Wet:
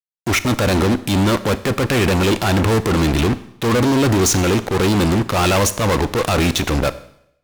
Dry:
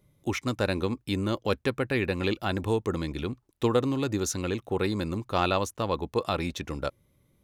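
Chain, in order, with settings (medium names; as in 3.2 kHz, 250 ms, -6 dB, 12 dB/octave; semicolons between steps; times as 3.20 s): fuzz box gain 40 dB, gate -41 dBFS; transient shaper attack -4 dB, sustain +5 dB; Schroeder reverb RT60 0.73 s, combs from 28 ms, DRR 14 dB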